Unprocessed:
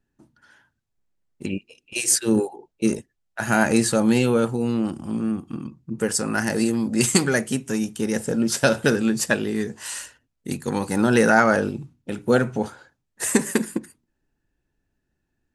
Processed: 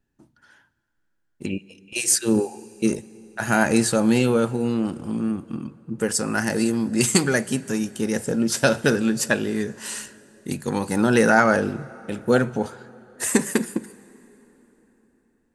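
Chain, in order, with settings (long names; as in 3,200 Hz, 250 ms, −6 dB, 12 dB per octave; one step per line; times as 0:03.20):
dense smooth reverb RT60 4.1 s, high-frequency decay 0.7×, DRR 19.5 dB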